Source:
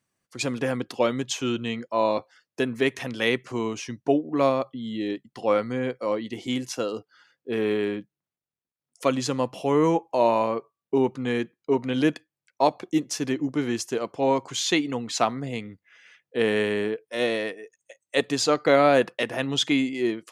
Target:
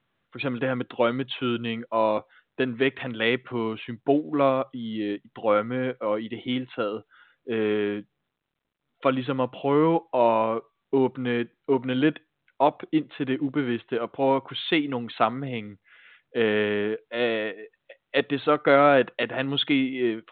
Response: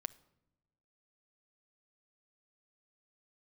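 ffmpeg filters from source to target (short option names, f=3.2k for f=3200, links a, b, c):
-af "equalizer=f=1.4k:t=o:w=0.23:g=6" -ar 8000 -c:a pcm_mulaw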